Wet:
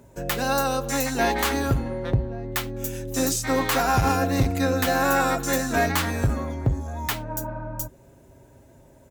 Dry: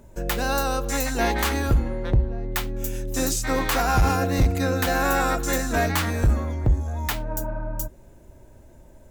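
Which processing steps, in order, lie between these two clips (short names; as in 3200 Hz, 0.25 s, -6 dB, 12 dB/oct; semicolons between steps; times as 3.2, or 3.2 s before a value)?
HPF 67 Hz 12 dB/oct; comb 7.4 ms, depth 34%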